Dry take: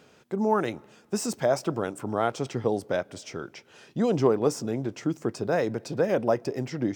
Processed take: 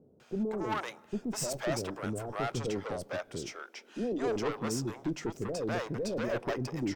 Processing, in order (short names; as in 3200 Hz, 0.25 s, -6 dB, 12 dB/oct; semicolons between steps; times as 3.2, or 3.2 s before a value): 3.52–4.28 steep high-pass 230 Hz 36 dB/oct; tube stage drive 26 dB, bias 0.35; bands offset in time lows, highs 0.2 s, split 550 Hz